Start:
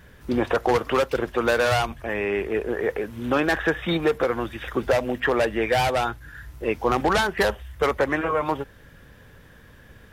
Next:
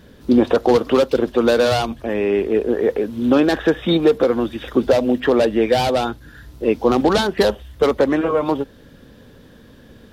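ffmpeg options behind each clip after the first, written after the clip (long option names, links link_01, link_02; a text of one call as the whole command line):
ffmpeg -i in.wav -af "equalizer=frequency=250:width_type=o:width=1:gain=11,equalizer=frequency=500:width_type=o:width=1:gain=5,equalizer=frequency=2000:width_type=o:width=1:gain=-5,equalizer=frequency=4000:width_type=o:width=1:gain=8" out.wav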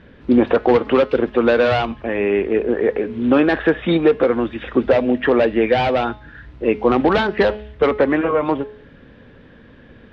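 ffmpeg -i in.wav -af "lowpass=frequency=2300:width_type=q:width=1.7,bandreject=frequency=211.7:width_type=h:width=4,bandreject=frequency=423.4:width_type=h:width=4,bandreject=frequency=635.1:width_type=h:width=4,bandreject=frequency=846.8:width_type=h:width=4,bandreject=frequency=1058.5:width_type=h:width=4,bandreject=frequency=1270.2:width_type=h:width=4,bandreject=frequency=1481.9:width_type=h:width=4,bandreject=frequency=1693.6:width_type=h:width=4,bandreject=frequency=1905.3:width_type=h:width=4,bandreject=frequency=2117:width_type=h:width=4,bandreject=frequency=2328.7:width_type=h:width=4,bandreject=frequency=2540.4:width_type=h:width=4,bandreject=frequency=2752.1:width_type=h:width=4,bandreject=frequency=2963.8:width_type=h:width=4,bandreject=frequency=3175.5:width_type=h:width=4,bandreject=frequency=3387.2:width_type=h:width=4,bandreject=frequency=3598.9:width_type=h:width=4,bandreject=frequency=3810.6:width_type=h:width=4,bandreject=frequency=4022.3:width_type=h:width=4,bandreject=frequency=4234:width_type=h:width=4,bandreject=frequency=4445.7:width_type=h:width=4,bandreject=frequency=4657.4:width_type=h:width=4,bandreject=frequency=4869.1:width_type=h:width=4,bandreject=frequency=5080.8:width_type=h:width=4,bandreject=frequency=5292.5:width_type=h:width=4,bandreject=frequency=5504.2:width_type=h:width=4,bandreject=frequency=5715.9:width_type=h:width=4" out.wav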